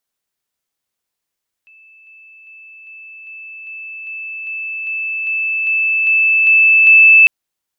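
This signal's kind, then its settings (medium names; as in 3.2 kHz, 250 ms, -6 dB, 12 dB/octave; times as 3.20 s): level ladder 2.63 kHz -42.5 dBFS, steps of 3 dB, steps 14, 0.40 s 0.00 s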